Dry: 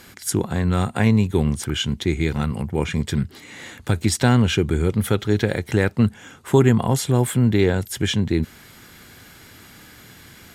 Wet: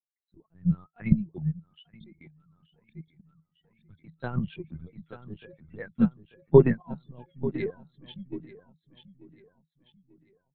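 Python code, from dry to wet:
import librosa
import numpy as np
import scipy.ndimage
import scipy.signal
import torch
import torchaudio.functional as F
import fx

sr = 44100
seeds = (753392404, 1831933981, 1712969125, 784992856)

y = fx.bin_expand(x, sr, power=3.0)
y = fx.lpc_vocoder(y, sr, seeds[0], excitation='pitch_kept', order=8)
y = fx.low_shelf(y, sr, hz=86.0, db=-10.5)
y = fx.echo_feedback(y, sr, ms=890, feedback_pct=39, wet_db=-8)
y = fx.level_steps(y, sr, step_db=17, at=(1.58, 4.18), fade=0.02)
y = fx.peak_eq(y, sr, hz=160.0, db=14.5, octaves=0.33)
y = fx.upward_expand(y, sr, threshold_db=-28.0, expansion=2.5)
y = F.gain(torch.from_numpy(y), 4.0).numpy()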